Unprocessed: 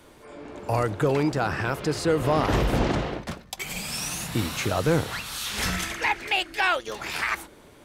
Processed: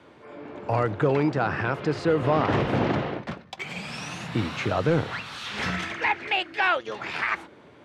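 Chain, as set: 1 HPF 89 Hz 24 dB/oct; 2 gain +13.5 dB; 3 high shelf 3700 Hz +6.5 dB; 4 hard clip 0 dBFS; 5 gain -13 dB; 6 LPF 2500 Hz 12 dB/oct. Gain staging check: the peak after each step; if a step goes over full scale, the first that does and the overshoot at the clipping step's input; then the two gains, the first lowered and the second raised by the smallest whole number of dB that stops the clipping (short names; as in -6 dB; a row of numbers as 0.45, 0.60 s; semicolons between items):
-8.5, +5.0, +5.5, 0.0, -13.0, -12.5 dBFS; step 2, 5.5 dB; step 2 +7.5 dB, step 5 -7 dB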